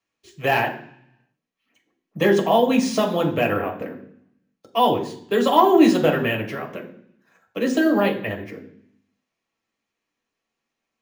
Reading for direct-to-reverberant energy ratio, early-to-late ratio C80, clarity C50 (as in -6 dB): 0.0 dB, 13.5 dB, 10.5 dB